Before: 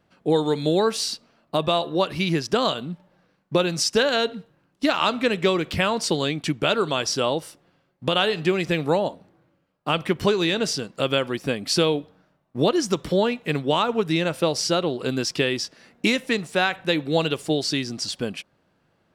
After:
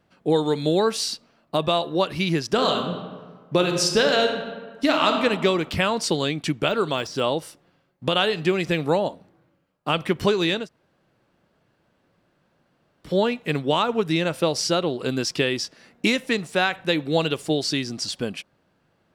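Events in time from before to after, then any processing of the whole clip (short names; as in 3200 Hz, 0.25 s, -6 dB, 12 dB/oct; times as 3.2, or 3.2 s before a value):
2.52–5.21 reverb throw, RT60 1.5 s, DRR 3.5 dB
6.68–7.22 de-esser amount 75%
10.61–13.09 room tone, crossfade 0.16 s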